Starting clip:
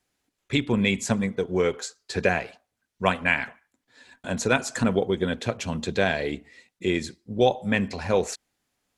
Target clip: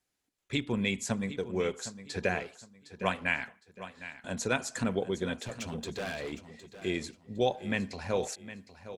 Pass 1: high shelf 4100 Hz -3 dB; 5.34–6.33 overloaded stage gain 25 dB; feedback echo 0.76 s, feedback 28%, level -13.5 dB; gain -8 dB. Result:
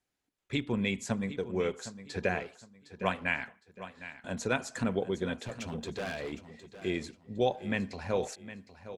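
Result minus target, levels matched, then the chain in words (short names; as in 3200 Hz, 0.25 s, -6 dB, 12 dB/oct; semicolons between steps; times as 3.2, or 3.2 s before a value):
8000 Hz band -4.5 dB
high shelf 4100 Hz +3.5 dB; 5.34–6.33 overloaded stage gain 25 dB; feedback echo 0.76 s, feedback 28%, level -13.5 dB; gain -8 dB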